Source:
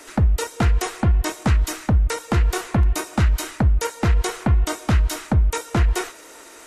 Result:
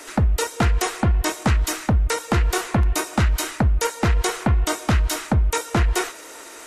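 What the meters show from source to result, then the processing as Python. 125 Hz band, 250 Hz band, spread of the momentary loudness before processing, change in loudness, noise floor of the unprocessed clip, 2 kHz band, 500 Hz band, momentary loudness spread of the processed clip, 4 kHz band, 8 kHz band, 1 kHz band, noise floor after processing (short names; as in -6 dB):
-1.5 dB, +0.5 dB, 1 LU, -0.5 dB, -44 dBFS, +3.0 dB, +2.0 dB, 1 LU, +3.0 dB, +3.5 dB, +2.5 dB, -40 dBFS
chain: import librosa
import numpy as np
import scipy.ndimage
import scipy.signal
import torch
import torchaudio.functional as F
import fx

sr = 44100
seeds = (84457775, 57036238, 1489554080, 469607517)

p1 = fx.low_shelf(x, sr, hz=230.0, db=-5.0)
p2 = 10.0 ** (-18.5 / 20.0) * np.tanh(p1 / 10.0 ** (-18.5 / 20.0))
y = p1 + (p2 * librosa.db_to_amplitude(-5.0))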